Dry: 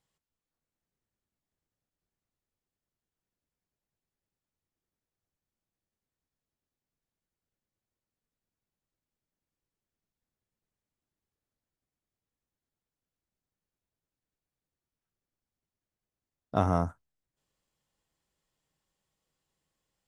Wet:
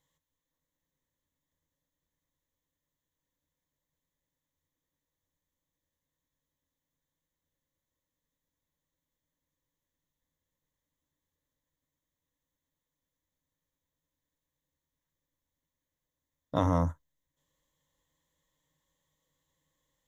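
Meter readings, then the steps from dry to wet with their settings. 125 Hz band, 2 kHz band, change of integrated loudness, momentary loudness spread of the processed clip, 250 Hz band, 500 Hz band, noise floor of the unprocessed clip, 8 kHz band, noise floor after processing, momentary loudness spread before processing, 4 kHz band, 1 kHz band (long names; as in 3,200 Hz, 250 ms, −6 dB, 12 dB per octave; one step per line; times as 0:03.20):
+1.0 dB, −2.0 dB, 0.0 dB, 7 LU, +1.0 dB, −1.0 dB, below −85 dBFS, can't be measured, below −85 dBFS, 7 LU, +3.0 dB, −2.0 dB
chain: EQ curve with evenly spaced ripples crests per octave 1.1, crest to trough 11 dB
in parallel at −1 dB: brickwall limiter −18.5 dBFS, peak gain reduction 8 dB
on the sum: level −4.5 dB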